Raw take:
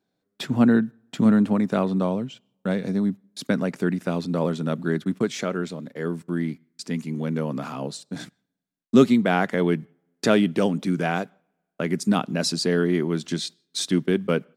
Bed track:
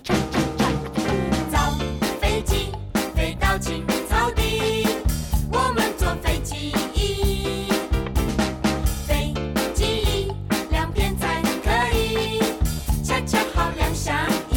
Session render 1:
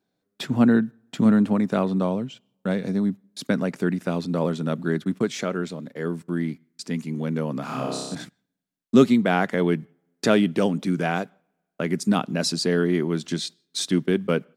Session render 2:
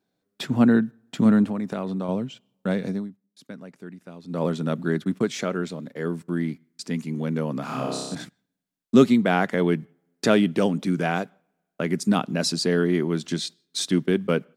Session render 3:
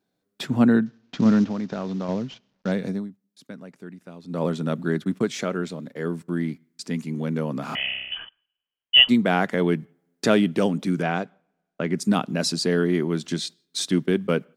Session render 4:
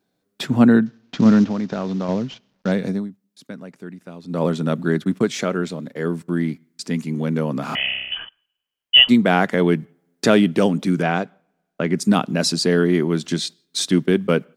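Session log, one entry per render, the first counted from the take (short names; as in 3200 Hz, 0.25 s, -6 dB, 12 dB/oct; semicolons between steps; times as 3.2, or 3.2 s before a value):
7.65–8.15 flutter echo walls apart 5.3 m, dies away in 1.1 s
1.44–2.09 compressor 3:1, threshold -26 dBFS; 2.86–4.46 dip -16.5 dB, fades 0.23 s
0.86–2.72 CVSD 32 kbps; 7.75–9.09 inverted band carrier 3200 Hz; 11.02–11.97 air absorption 82 m
gain +4.5 dB; limiter -1 dBFS, peak gain reduction 2.5 dB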